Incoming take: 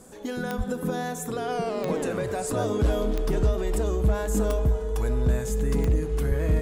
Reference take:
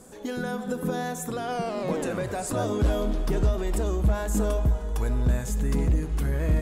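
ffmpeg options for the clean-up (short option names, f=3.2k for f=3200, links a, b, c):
-filter_complex "[0:a]adeclick=t=4,bandreject=f=440:w=30,asplit=3[a][b][c];[a]afade=t=out:st=0.57:d=0.02[d];[b]highpass=f=140:w=0.5412,highpass=f=140:w=1.3066,afade=t=in:st=0.57:d=0.02,afade=t=out:st=0.69:d=0.02[e];[c]afade=t=in:st=0.69:d=0.02[f];[d][e][f]amix=inputs=3:normalize=0,asplit=3[g][h][i];[g]afade=t=out:st=6.28:d=0.02[j];[h]highpass=f=140:w=0.5412,highpass=f=140:w=1.3066,afade=t=in:st=6.28:d=0.02,afade=t=out:st=6.4:d=0.02[k];[i]afade=t=in:st=6.4:d=0.02[l];[j][k][l]amix=inputs=3:normalize=0"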